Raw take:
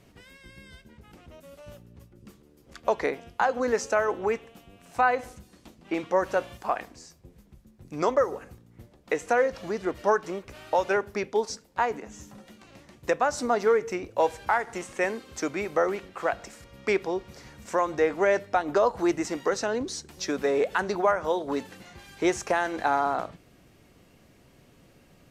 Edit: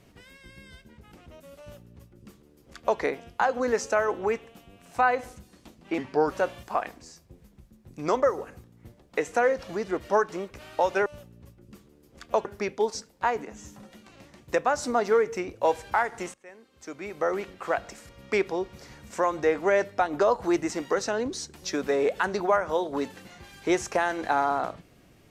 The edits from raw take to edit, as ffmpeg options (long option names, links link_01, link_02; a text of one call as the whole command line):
ffmpeg -i in.wav -filter_complex "[0:a]asplit=6[link_01][link_02][link_03][link_04][link_05][link_06];[link_01]atrim=end=5.984[link_07];[link_02]atrim=start=5.98:end=6.25,asetpts=PTS-STARTPTS,asetrate=36162,aresample=44100[link_08];[link_03]atrim=start=6.246:end=11.002[link_09];[link_04]atrim=start=1.598:end=2.992[link_10];[link_05]atrim=start=10.998:end=14.89,asetpts=PTS-STARTPTS,afade=type=out:start_time=3.888:duration=0.004:curve=hsin:silence=0.0668344[link_11];[link_06]atrim=start=14.89,asetpts=PTS-STARTPTS,afade=type=in:duration=1.08:curve=qua:silence=0.0668344[link_12];[link_07][link_08]acrossfade=duration=0.004:curve1=hsin:curve2=hsin[link_13];[link_13][link_09]acrossfade=duration=0.004:curve1=hsin:curve2=hsin[link_14];[link_14][link_10]acrossfade=duration=0.004:curve1=hsin:curve2=hsin[link_15];[link_11][link_12]concat=n=2:v=0:a=1[link_16];[link_15][link_16]acrossfade=duration=0.004:curve1=hsin:curve2=hsin" out.wav